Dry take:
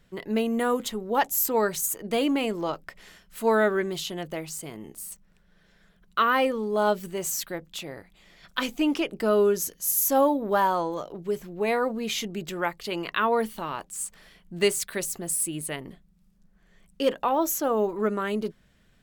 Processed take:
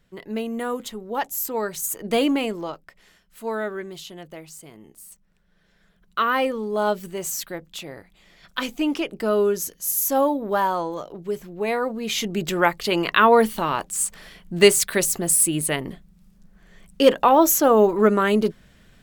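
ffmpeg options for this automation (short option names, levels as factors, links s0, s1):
-af "volume=10,afade=t=in:st=1.73:d=0.43:silence=0.421697,afade=t=out:st=2.16:d=0.66:silence=0.281838,afade=t=in:st=5.05:d=1.3:silence=0.446684,afade=t=in:st=12.01:d=0.47:silence=0.398107"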